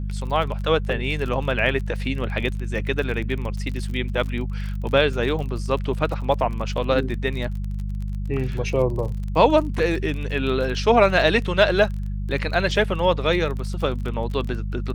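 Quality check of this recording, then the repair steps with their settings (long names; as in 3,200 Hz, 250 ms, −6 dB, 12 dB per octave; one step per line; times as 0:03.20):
surface crackle 30 per second −29 dBFS
mains hum 50 Hz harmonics 4 −27 dBFS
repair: click removal
hum removal 50 Hz, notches 4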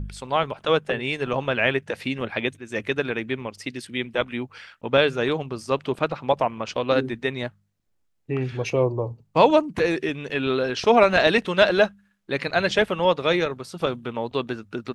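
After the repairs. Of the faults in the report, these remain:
none of them is left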